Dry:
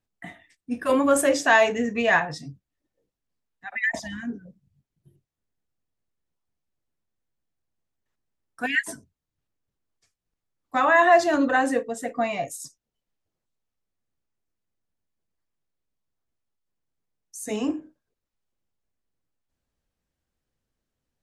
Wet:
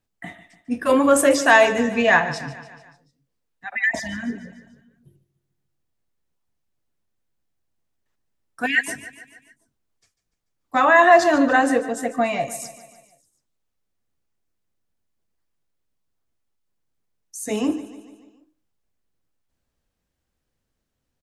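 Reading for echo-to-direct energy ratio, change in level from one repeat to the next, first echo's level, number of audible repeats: -13.5 dB, -5.0 dB, -15.0 dB, 4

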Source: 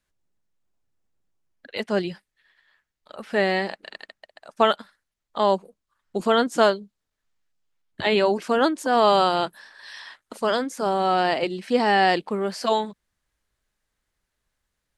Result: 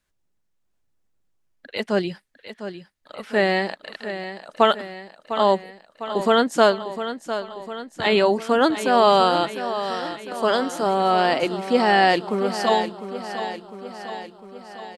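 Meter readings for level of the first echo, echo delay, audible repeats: -11.0 dB, 703 ms, 6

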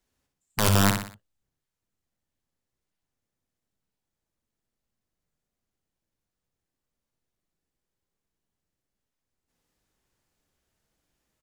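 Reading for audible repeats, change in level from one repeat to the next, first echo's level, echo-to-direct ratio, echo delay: 4, -7.5 dB, -5.5 dB, -4.5 dB, 61 ms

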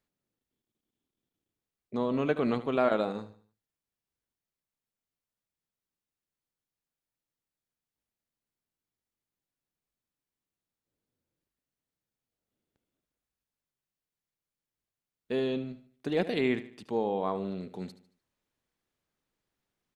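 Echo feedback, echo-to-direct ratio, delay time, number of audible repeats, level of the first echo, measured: 40%, -14.0 dB, 75 ms, 3, -14.5 dB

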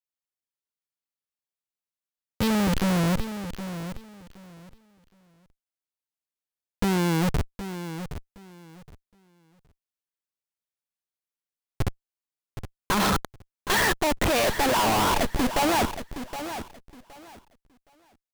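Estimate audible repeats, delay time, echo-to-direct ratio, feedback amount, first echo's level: 2, 768 ms, -11.0 dB, 21%, -11.0 dB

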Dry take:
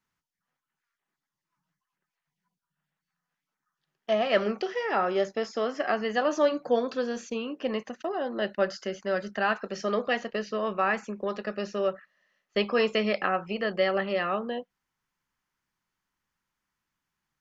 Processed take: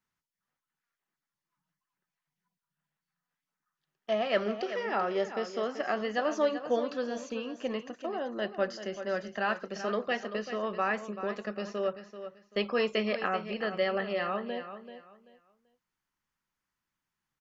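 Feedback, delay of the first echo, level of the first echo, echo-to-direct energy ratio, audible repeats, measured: 24%, 386 ms, -11.0 dB, -10.5 dB, 2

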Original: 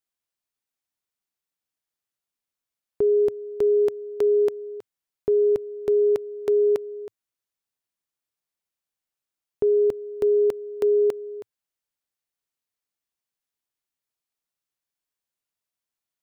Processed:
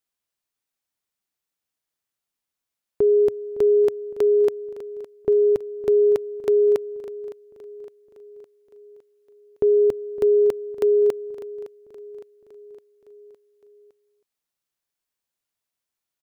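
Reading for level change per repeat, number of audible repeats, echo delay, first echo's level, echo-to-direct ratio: -5.0 dB, 4, 561 ms, -17.0 dB, -15.5 dB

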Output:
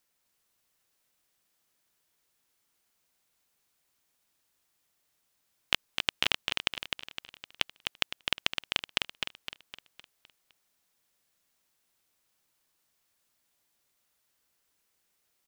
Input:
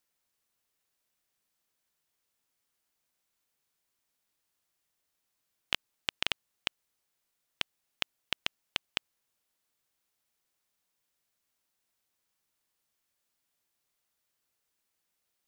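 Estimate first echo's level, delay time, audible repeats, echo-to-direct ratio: -5.0 dB, 256 ms, 5, -4.0 dB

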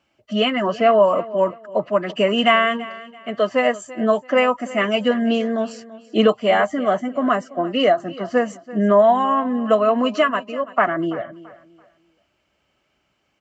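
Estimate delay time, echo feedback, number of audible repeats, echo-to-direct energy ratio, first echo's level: 335 ms, 29%, 2, -17.5 dB, -18.0 dB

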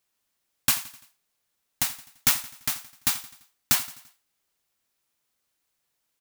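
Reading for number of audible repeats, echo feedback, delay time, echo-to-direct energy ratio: 3, 50%, 85 ms, -16.0 dB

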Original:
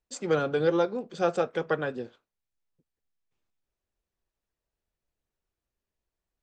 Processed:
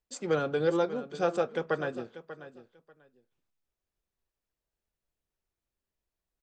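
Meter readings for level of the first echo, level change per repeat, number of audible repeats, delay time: -14.0 dB, -15.0 dB, 2, 590 ms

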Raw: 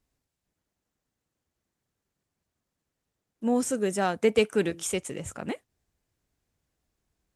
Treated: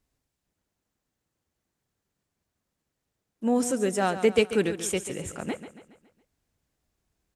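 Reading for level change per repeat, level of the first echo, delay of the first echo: -6.5 dB, -12.0 dB, 139 ms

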